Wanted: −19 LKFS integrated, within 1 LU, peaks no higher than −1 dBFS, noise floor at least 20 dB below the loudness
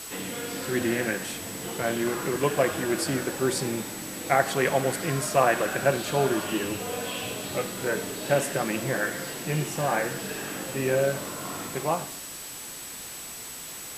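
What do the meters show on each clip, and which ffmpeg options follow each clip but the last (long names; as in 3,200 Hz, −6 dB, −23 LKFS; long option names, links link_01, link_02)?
interfering tone 7,900 Hz; level of the tone −42 dBFS; background noise floor −39 dBFS; target noise floor −48 dBFS; integrated loudness −28.0 LKFS; sample peak −6.5 dBFS; target loudness −19.0 LKFS
→ -af "bandreject=frequency=7900:width=30"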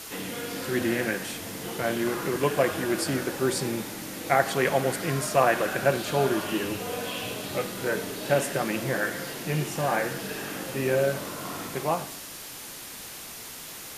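interfering tone none found; background noise floor −41 dBFS; target noise floor −48 dBFS
→ -af "afftdn=noise_reduction=7:noise_floor=-41"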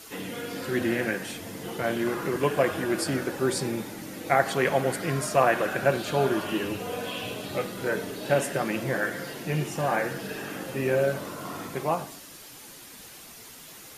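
background noise floor −46 dBFS; target noise floor −48 dBFS
→ -af "afftdn=noise_reduction=6:noise_floor=-46"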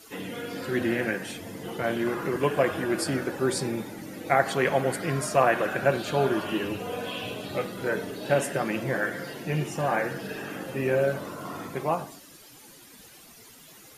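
background noise floor −51 dBFS; integrated loudness −28.0 LKFS; sample peak −6.5 dBFS; target loudness −19.0 LKFS
→ -af "volume=9dB,alimiter=limit=-1dB:level=0:latency=1"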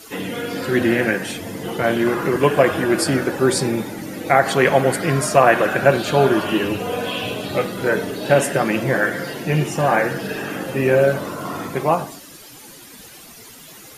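integrated loudness −19.0 LKFS; sample peak −1.0 dBFS; background noise floor −42 dBFS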